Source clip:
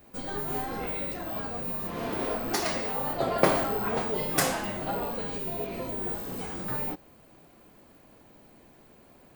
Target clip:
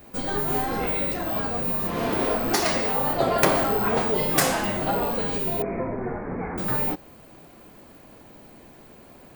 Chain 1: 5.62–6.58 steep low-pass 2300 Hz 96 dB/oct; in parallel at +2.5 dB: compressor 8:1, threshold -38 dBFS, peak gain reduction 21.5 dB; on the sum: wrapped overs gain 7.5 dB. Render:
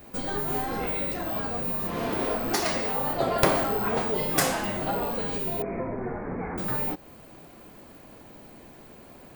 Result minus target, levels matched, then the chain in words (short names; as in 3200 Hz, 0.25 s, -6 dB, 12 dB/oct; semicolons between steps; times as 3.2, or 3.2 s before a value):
compressor: peak gain reduction +10 dB
5.62–6.58 steep low-pass 2300 Hz 96 dB/oct; in parallel at +2.5 dB: compressor 8:1, threshold -26.5 dBFS, peak gain reduction 11.5 dB; on the sum: wrapped overs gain 7.5 dB